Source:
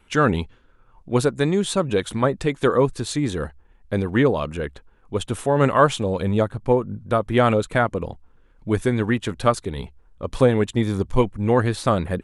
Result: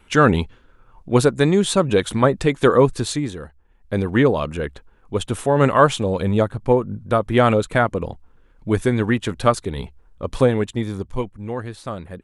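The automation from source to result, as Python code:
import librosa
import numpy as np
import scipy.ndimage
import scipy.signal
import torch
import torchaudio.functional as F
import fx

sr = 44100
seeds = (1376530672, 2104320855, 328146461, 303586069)

y = fx.gain(x, sr, db=fx.line((3.07, 4.0), (3.42, -8.0), (4.02, 2.0), (10.27, 2.0), (11.58, -10.0)))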